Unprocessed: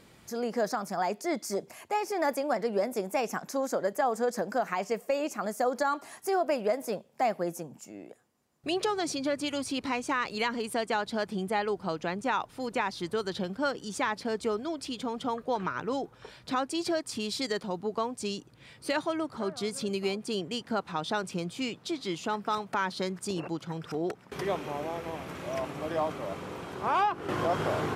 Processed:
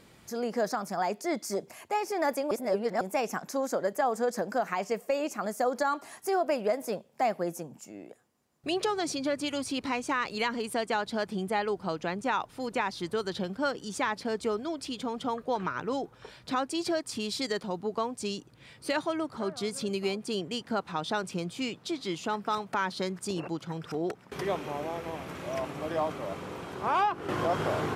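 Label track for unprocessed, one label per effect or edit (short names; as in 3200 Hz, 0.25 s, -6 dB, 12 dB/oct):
2.510000	3.010000	reverse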